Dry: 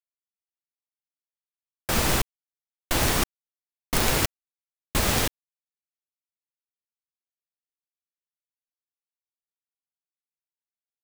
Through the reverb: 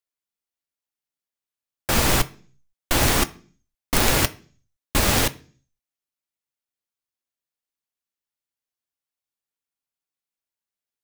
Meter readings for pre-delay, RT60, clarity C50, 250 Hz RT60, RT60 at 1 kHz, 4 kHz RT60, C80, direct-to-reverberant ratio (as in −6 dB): 3 ms, 0.45 s, 20.5 dB, 0.60 s, 0.35 s, 0.50 s, 25.0 dB, 11.0 dB